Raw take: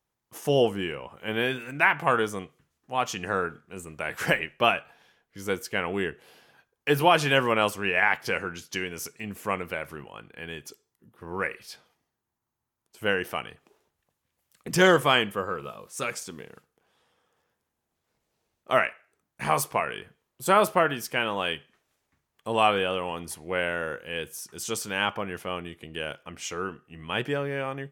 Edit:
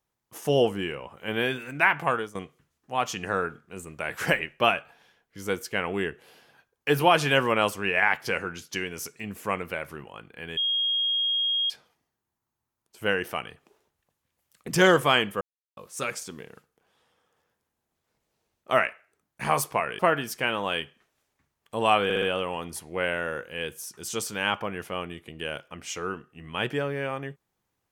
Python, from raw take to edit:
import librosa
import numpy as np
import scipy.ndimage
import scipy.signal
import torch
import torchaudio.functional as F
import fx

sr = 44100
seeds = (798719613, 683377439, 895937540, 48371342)

y = fx.edit(x, sr, fx.fade_out_to(start_s=2.01, length_s=0.34, floor_db=-16.5),
    fx.bleep(start_s=10.57, length_s=1.13, hz=3260.0, db=-22.5),
    fx.silence(start_s=15.41, length_s=0.36),
    fx.cut(start_s=19.99, length_s=0.73),
    fx.stutter(start_s=22.77, slice_s=0.06, count=4), tone=tone)